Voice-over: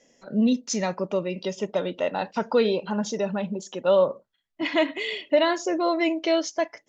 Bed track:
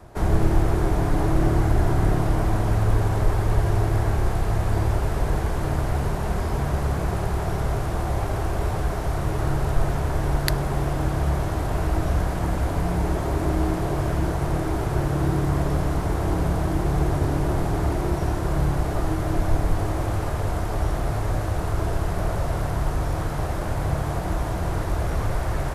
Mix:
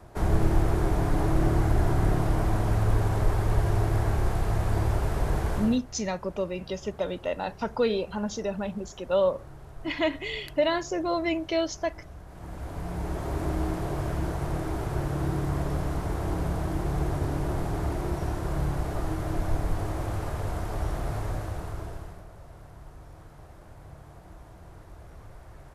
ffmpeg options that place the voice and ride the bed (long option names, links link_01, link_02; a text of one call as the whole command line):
ffmpeg -i stem1.wav -i stem2.wav -filter_complex "[0:a]adelay=5250,volume=-4dB[link_01];[1:a]volume=13dB,afade=type=out:start_time=5.57:duration=0.23:silence=0.112202,afade=type=in:start_time=12.26:duration=1.14:silence=0.149624,afade=type=out:start_time=21.19:duration=1.06:silence=0.149624[link_02];[link_01][link_02]amix=inputs=2:normalize=0" out.wav